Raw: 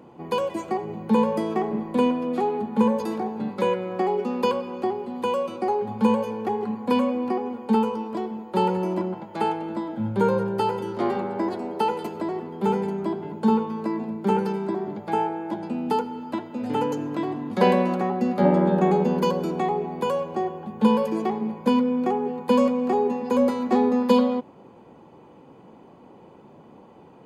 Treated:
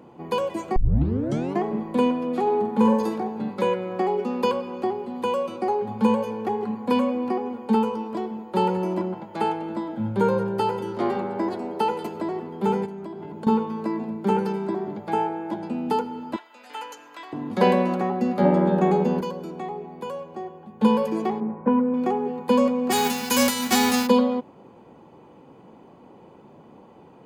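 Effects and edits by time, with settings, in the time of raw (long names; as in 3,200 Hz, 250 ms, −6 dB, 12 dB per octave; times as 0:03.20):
0:00.76: tape start 0.87 s
0:02.42–0:03.09: flutter between parallel walls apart 7.8 metres, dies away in 0.45 s
0:12.85–0:13.47: downward compressor, threshold −32 dBFS
0:16.36–0:17.33: high-pass filter 1,300 Hz
0:19.21–0:20.81: clip gain −8 dB
0:21.40–0:21.94: low-pass filter 1,800 Hz 24 dB per octave
0:22.90–0:24.06: spectral envelope flattened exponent 0.3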